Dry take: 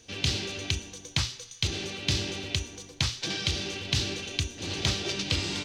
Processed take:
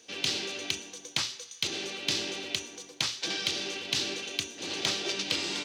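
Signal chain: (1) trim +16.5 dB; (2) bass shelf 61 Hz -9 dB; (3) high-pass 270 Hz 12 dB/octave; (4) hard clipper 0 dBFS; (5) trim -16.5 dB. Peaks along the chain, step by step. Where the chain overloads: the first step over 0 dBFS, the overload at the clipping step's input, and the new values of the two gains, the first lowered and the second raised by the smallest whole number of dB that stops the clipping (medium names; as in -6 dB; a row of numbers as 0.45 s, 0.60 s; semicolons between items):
+6.0 dBFS, +6.0 dBFS, +5.5 dBFS, 0.0 dBFS, -16.5 dBFS; step 1, 5.5 dB; step 1 +10.5 dB, step 5 -10.5 dB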